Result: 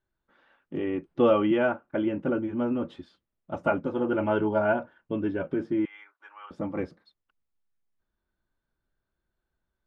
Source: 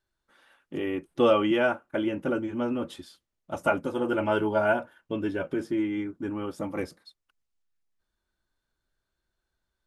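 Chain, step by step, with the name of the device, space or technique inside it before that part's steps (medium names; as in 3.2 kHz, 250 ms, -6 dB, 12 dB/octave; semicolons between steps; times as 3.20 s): phone in a pocket (low-pass 4 kHz 12 dB/octave; peaking EQ 180 Hz +3 dB 1.3 oct; treble shelf 2.4 kHz -8.5 dB); 5.85–6.51 s: inverse Chebyshev high-pass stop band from 210 Hz, stop band 70 dB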